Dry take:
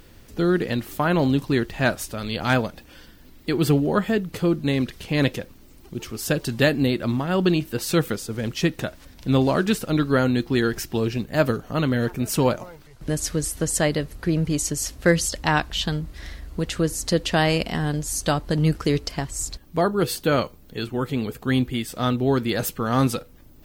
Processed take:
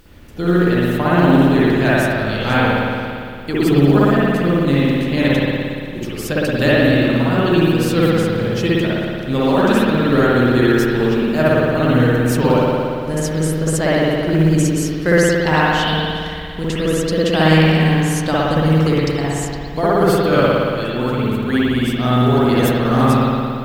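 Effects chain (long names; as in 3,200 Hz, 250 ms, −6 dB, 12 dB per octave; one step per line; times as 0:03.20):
spring reverb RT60 2.3 s, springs 57 ms, chirp 65 ms, DRR −8.5 dB
log-companded quantiser 8 bits
level −1 dB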